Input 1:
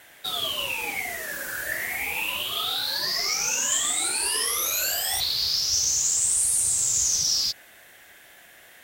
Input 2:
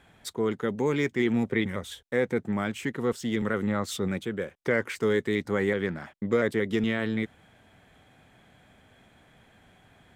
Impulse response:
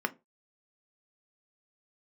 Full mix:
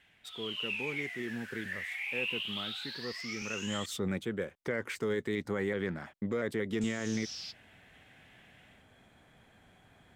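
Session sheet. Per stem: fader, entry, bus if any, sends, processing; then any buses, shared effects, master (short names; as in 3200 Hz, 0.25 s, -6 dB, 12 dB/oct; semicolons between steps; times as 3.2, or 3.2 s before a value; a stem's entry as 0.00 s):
-9.0 dB, 0.00 s, muted 3.86–6.81, send -17.5 dB, AGC gain up to 10 dB; band-pass 2700 Hz, Q 2.6; auto duck -9 dB, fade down 0.40 s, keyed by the second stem
3.43 s -14 dB -> 4.01 s -3.5 dB, 0.00 s, no send, dry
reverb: on, RT60 0.25 s, pre-delay 3 ms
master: limiter -23 dBFS, peak gain reduction 7 dB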